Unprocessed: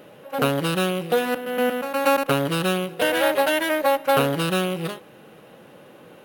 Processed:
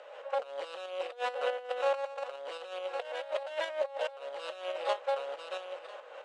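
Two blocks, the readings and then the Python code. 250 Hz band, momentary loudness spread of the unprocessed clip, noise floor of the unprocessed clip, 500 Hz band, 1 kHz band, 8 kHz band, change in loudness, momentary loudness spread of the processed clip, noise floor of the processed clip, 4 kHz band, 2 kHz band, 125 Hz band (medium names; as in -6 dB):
under -35 dB, 6 LU, -48 dBFS, -11.0 dB, -12.5 dB, under -20 dB, -14.0 dB, 9 LU, -49 dBFS, -14.5 dB, -15.5 dB, under -40 dB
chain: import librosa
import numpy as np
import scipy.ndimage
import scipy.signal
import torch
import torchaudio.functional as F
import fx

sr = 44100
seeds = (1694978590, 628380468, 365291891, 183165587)

y = fx.dynamic_eq(x, sr, hz=1500.0, q=0.96, threshold_db=-36.0, ratio=4.0, max_db=-7)
y = y + 10.0 ** (-13.5 / 20.0) * np.pad(y, (int(994 * sr / 1000.0), 0))[:len(y)]
y = fx.over_compress(y, sr, threshold_db=-28.0, ratio=-0.5)
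y = fx.high_shelf(y, sr, hz=3300.0, db=-9.5)
y = fx.volume_shaper(y, sr, bpm=140, per_beat=2, depth_db=-6, release_ms=143.0, shape='slow start')
y = scipy.signal.sosfilt(scipy.signal.cheby1(4, 1.0, [530.0, 8000.0], 'bandpass', fs=sr, output='sos'), y)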